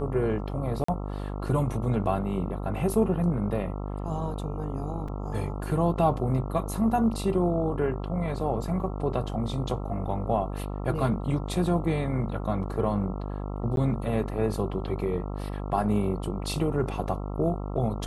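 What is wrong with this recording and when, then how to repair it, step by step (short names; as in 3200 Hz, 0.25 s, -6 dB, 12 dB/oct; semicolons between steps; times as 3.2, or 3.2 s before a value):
buzz 50 Hz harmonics 27 -33 dBFS
0.84–0.88 gap 44 ms
5.08 gap 4.1 ms
13.76–13.77 gap 12 ms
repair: de-hum 50 Hz, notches 27; interpolate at 0.84, 44 ms; interpolate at 5.08, 4.1 ms; interpolate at 13.76, 12 ms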